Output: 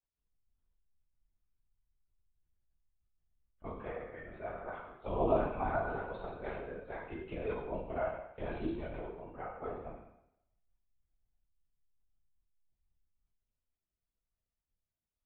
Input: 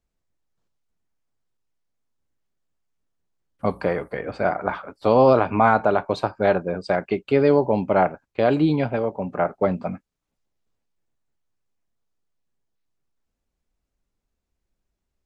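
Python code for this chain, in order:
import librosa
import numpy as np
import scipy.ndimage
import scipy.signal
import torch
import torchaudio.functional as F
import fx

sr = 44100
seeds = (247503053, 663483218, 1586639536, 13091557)

y = fx.resonator_bank(x, sr, root=45, chord='minor', decay_s=0.75)
y = fx.lpc_vocoder(y, sr, seeds[0], excitation='whisper', order=16)
y = fx.rev_gated(y, sr, seeds[1], gate_ms=260, shape='falling', drr_db=6.5)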